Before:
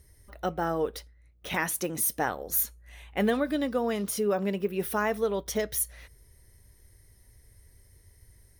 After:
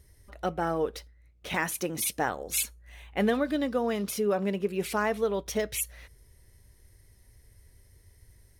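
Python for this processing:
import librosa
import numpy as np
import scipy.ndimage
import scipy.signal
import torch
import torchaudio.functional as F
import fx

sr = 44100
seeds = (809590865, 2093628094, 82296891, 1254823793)

y = np.interp(np.arange(len(x)), np.arange(len(x))[::2], x[::2])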